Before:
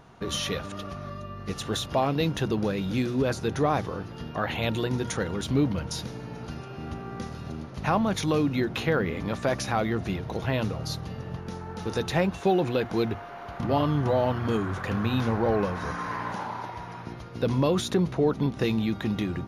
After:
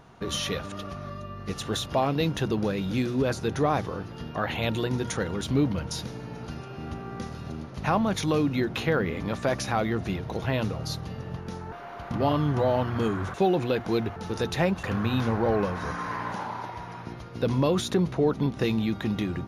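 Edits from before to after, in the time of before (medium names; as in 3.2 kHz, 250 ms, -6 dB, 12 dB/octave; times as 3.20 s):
11.72–12.39 s: swap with 13.21–14.83 s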